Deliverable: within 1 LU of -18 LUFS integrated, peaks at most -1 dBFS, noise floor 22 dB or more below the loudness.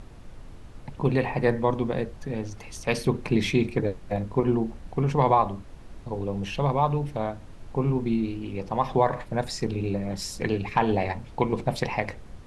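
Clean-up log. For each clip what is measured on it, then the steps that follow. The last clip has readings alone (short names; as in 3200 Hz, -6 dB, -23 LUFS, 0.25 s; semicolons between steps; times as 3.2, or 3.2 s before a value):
noise floor -45 dBFS; noise floor target -49 dBFS; loudness -27.0 LUFS; peak -7.5 dBFS; loudness target -18.0 LUFS
-> noise print and reduce 6 dB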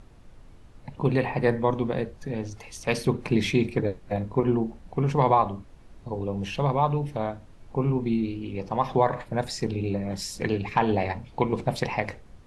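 noise floor -50 dBFS; loudness -27.0 LUFS; peak -7.5 dBFS; loudness target -18.0 LUFS
-> gain +9 dB; limiter -1 dBFS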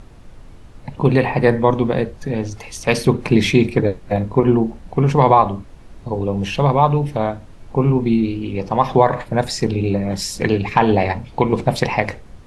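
loudness -18.0 LUFS; peak -1.0 dBFS; noise floor -41 dBFS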